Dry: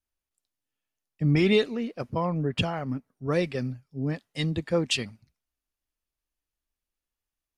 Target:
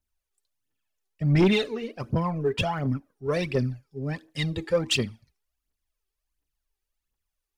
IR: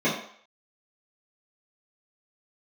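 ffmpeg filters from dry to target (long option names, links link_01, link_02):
-filter_complex "[0:a]asplit=2[link_01][link_02];[1:a]atrim=start_sample=2205,asetrate=66150,aresample=44100[link_03];[link_02][link_03]afir=irnorm=-1:irlink=0,volume=-29.5dB[link_04];[link_01][link_04]amix=inputs=2:normalize=0,aphaser=in_gain=1:out_gain=1:delay=2.7:decay=0.65:speed=1.4:type=triangular,asoftclip=type=tanh:threshold=-13.5dB"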